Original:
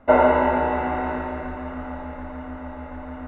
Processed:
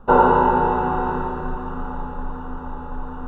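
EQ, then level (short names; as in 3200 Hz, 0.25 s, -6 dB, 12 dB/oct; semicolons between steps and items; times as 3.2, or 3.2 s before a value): low shelf 160 Hz +10.5 dB; fixed phaser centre 420 Hz, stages 8; +6.0 dB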